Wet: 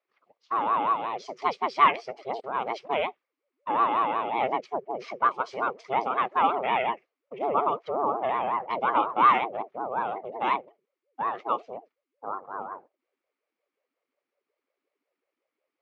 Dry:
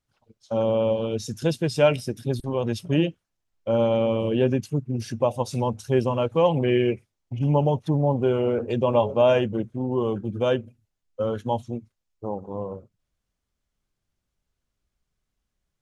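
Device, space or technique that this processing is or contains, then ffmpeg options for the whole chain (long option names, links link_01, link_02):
voice changer toy: -af "aeval=exprs='val(0)*sin(2*PI*420*n/s+420*0.4/5.5*sin(2*PI*5.5*n/s))':channel_layout=same,highpass=480,equalizer=frequency=1200:width_type=q:width=4:gain=7,equalizer=frequency=2200:width_type=q:width=4:gain=9,equalizer=frequency=3700:width_type=q:width=4:gain=-5,lowpass=frequency=4400:width=0.5412,lowpass=frequency=4400:width=1.3066"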